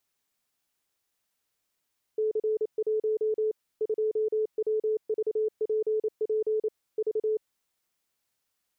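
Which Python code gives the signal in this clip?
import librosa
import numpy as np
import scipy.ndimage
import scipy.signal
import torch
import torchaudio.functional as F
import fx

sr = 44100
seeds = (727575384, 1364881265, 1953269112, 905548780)

y = fx.morse(sr, text='C1 2WVPP V', wpm=28, hz=433.0, level_db=-23.5)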